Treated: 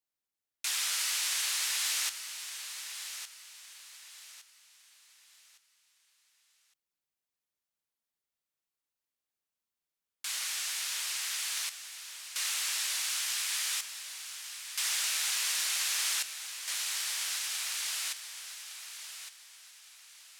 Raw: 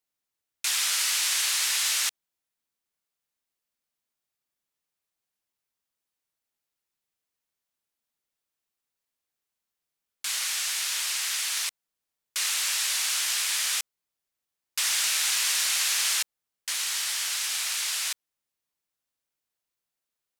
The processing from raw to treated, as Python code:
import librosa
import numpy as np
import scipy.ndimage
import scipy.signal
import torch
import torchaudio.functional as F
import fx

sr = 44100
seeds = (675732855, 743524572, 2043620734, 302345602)

y = fx.highpass(x, sr, hz=540.0, slope=6, at=(13.0, 14.86))
y = fx.echo_feedback(y, sr, ms=1161, feedback_pct=33, wet_db=-10)
y = y * 10.0 ** (-6.0 / 20.0)